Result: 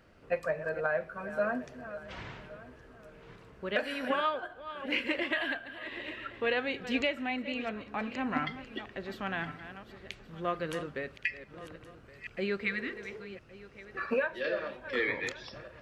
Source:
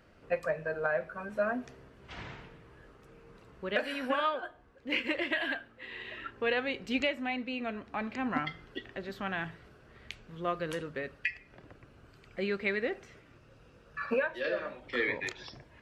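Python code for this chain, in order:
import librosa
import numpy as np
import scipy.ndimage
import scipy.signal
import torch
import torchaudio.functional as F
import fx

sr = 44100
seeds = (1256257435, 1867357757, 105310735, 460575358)

y = fx.reverse_delay_fb(x, sr, ms=560, feedback_pct=45, wet_db=-12.0)
y = fx.spec_repair(y, sr, seeds[0], start_s=12.66, length_s=0.56, low_hz=350.0, high_hz=1100.0, source='before')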